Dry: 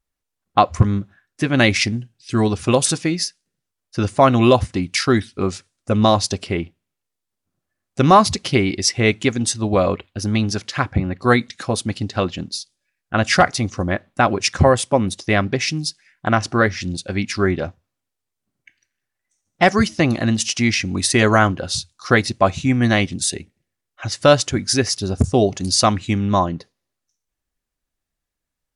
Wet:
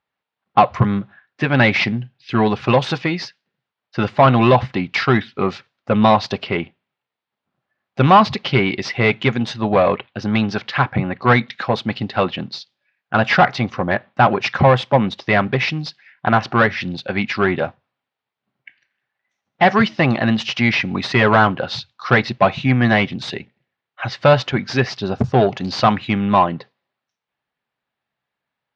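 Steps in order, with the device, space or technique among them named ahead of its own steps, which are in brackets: overdrive pedal into a guitar cabinet (overdrive pedal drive 17 dB, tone 2.8 kHz, clips at -2 dBFS; cabinet simulation 99–4000 Hz, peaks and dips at 130 Hz +10 dB, 210 Hz +4 dB, 310 Hz -4 dB, 850 Hz +4 dB); trim -2.5 dB

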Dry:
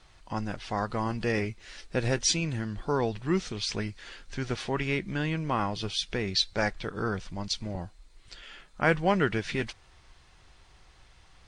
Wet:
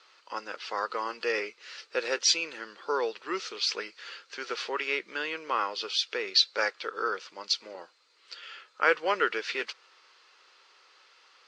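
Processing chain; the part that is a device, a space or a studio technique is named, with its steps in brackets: phone speaker on a table (cabinet simulation 420–6900 Hz, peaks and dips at 480 Hz +4 dB, 700 Hz -10 dB, 1.3 kHz +7 dB, 2.7 kHz +4 dB, 4.6 kHz +6 dB)

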